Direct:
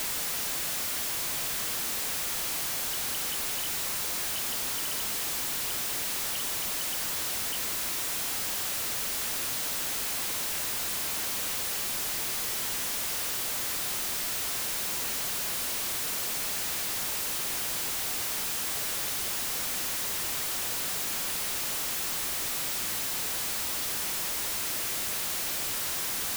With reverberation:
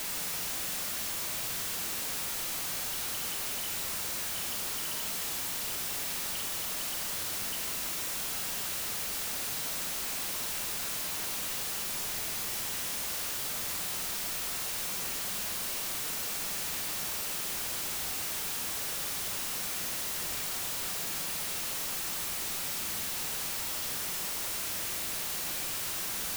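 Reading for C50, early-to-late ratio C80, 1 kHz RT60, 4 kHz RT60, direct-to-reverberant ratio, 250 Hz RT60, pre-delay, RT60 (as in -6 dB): 6.0 dB, 9.0 dB, 0.70 s, 0.60 s, 4.0 dB, 0.95 s, 35 ms, 0.75 s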